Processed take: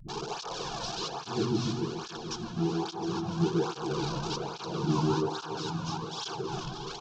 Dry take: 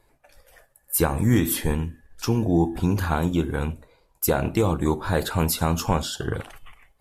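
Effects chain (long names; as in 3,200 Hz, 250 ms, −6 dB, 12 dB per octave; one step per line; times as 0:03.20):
linear delta modulator 32 kbit/s, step −21.5 dBFS
mains-hum notches 60/120/180/240 Hz
noise gate with hold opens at −24 dBFS
volume swells 289 ms
phaser with its sweep stopped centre 390 Hz, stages 8
double-tracking delay 13 ms −13 dB
all-pass dispersion highs, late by 85 ms, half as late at 300 Hz
on a send: echo whose low-pass opens from repeat to repeat 143 ms, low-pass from 750 Hz, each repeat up 1 octave, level 0 dB
on the sum: through-zero flanger with one copy inverted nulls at 1.2 Hz, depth 2.6 ms
level −1.5 dB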